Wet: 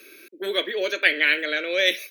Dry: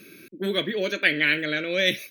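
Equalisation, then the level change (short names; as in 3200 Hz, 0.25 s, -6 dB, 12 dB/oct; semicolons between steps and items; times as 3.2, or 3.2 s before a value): HPF 370 Hz 24 dB/oct; +2.0 dB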